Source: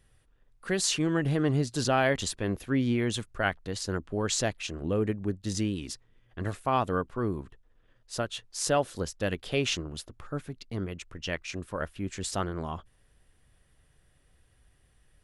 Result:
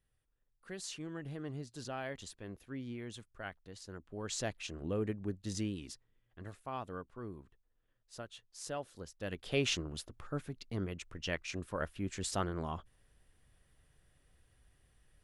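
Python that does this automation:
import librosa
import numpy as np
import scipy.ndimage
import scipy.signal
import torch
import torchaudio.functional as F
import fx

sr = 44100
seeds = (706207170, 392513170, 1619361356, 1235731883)

y = fx.gain(x, sr, db=fx.line((3.95, -16.5), (4.53, -7.5), (5.67, -7.5), (6.46, -15.0), (9.08, -15.0), (9.57, -4.0)))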